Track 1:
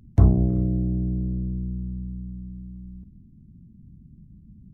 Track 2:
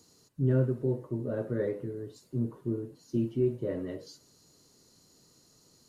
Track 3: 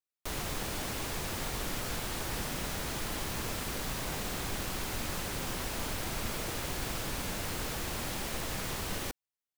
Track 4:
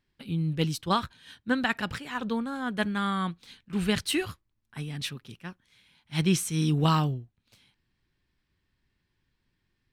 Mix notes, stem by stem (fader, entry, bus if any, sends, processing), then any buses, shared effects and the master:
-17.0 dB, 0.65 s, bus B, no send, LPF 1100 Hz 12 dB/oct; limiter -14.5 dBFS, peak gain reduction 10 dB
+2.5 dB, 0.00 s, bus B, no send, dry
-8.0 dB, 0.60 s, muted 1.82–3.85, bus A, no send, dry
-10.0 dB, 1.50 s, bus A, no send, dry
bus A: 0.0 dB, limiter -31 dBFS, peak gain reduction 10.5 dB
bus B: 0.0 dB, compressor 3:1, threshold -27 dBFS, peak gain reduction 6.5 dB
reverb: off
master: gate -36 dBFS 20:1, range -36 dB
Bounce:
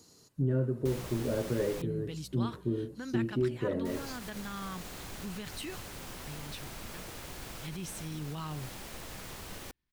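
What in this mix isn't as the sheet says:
stem 1 -17.0 dB -> -25.5 dB; master: missing gate -36 dBFS 20:1, range -36 dB

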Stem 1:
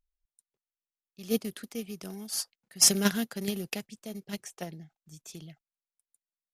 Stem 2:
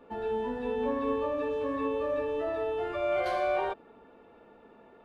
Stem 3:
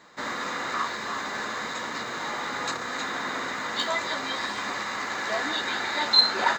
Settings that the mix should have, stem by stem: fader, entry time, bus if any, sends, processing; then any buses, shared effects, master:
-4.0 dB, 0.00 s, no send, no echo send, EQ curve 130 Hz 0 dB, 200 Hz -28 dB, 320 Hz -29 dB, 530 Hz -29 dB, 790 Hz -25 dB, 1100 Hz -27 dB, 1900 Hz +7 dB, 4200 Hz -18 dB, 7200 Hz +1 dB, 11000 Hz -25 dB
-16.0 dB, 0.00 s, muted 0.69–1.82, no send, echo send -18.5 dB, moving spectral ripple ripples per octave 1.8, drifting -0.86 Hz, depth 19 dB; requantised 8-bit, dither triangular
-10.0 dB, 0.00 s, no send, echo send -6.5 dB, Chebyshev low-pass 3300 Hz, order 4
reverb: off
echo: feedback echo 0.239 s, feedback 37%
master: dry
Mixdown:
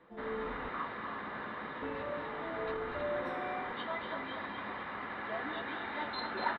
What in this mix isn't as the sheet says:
stem 1: muted; stem 2: missing requantised 8-bit, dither triangular; master: extra tilt -2 dB/oct

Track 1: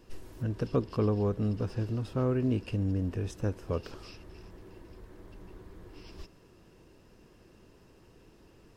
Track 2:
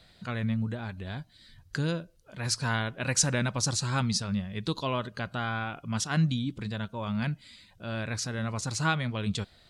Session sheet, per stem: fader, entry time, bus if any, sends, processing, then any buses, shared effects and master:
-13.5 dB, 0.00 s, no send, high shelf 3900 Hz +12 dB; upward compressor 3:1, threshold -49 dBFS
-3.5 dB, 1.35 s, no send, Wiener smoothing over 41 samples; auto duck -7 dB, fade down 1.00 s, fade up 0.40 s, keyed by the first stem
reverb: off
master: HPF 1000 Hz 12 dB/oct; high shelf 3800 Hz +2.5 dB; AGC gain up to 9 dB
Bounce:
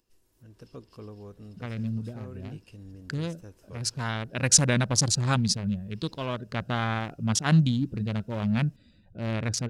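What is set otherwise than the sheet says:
stem 1 -13.5 dB -> -25.0 dB; master: missing HPF 1000 Hz 12 dB/oct

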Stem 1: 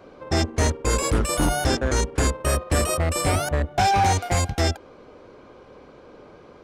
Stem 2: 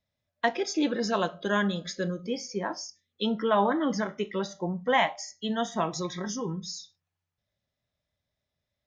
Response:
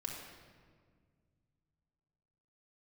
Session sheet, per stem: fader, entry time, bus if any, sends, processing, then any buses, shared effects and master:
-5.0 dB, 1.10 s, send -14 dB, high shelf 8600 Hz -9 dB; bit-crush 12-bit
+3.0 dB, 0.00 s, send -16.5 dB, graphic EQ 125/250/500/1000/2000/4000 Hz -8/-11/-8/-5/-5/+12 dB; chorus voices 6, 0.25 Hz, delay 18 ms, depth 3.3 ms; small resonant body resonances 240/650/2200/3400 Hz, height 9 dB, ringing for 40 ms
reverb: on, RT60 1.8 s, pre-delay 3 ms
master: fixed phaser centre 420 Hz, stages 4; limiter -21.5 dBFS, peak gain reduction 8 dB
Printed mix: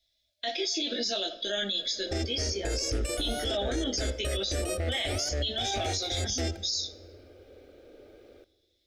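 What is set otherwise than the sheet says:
stem 1: entry 1.10 s -> 1.80 s; stem 2 +3.0 dB -> +9.5 dB

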